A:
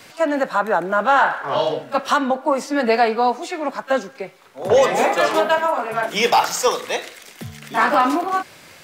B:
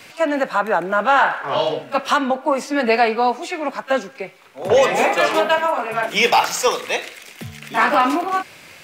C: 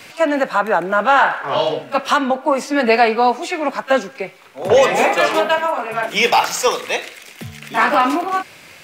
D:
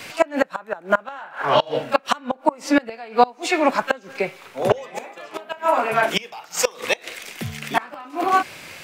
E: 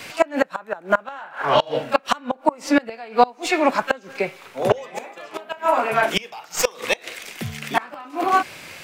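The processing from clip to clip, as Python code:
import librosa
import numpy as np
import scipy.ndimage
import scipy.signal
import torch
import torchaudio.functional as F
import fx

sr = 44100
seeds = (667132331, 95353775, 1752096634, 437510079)

y1 = fx.peak_eq(x, sr, hz=2500.0, db=6.0, octaves=0.55)
y2 = fx.rider(y1, sr, range_db=10, speed_s=2.0)
y2 = F.gain(torch.from_numpy(y2), 1.0).numpy()
y3 = fx.gate_flip(y2, sr, shuts_db=-7.0, range_db=-26)
y3 = F.gain(torch.from_numpy(y3), 2.5).numpy()
y4 = fx.tracing_dist(y3, sr, depth_ms=0.023)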